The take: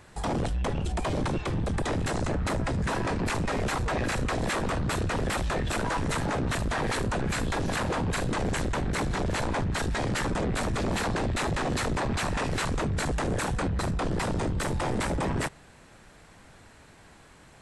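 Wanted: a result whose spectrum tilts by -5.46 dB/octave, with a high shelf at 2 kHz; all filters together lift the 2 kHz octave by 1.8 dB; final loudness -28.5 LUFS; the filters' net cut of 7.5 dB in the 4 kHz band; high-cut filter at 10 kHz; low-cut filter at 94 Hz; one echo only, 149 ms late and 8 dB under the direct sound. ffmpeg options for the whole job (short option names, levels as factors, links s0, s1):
-af "highpass=94,lowpass=10000,highshelf=f=2000:g=-6,equalizer=f=2000:t=o:g=7,equalizer=f=4000:t=o:g=-6.5,aecho=1:1:149:0.398,volume=1.12"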